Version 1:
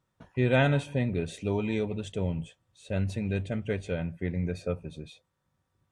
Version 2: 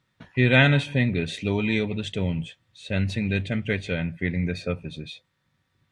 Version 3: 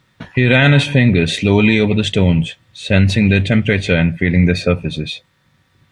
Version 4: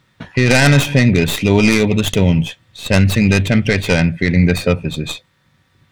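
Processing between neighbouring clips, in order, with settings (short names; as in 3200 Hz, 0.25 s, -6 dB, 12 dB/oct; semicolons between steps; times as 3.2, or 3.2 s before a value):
ten-band EQ 125 Hz +5 dB, 250 Hz +5 dB, 2000 Hz +11 dB, 4000 Hz +10 dB
maximiser +15 dB; gain -1 dB
tracing distortion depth 0.14 ms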